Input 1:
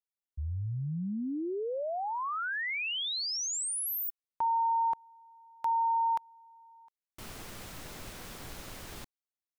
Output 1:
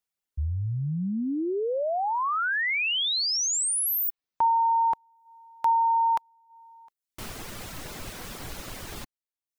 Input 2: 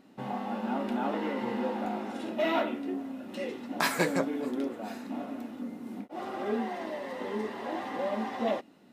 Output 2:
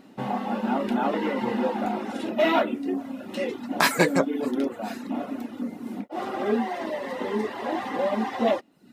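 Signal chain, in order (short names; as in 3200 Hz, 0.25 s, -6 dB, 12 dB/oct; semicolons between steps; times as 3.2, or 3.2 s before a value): reverb removal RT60 0.6 s; gain +7.5 dB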